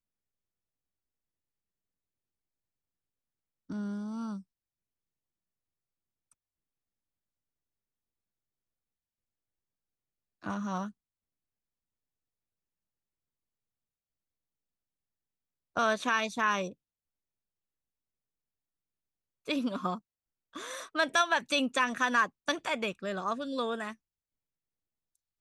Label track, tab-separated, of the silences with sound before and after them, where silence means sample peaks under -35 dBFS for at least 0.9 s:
4.370000	10.460000	silence
10.870000	15.770000	silence
16.690000	19.480000	silence